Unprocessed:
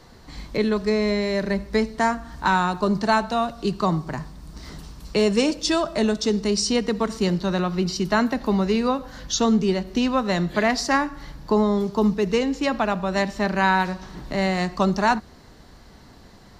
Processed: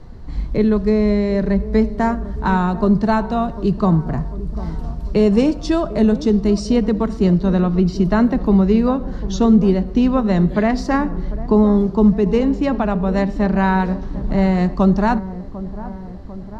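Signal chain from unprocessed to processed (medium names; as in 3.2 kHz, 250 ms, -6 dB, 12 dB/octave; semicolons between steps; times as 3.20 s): tilt EQ -3.5 dB/octave; on a send: feedback echo behind a low-pass 747 ms, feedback 59%, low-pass 1.1 kHz, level -15 dB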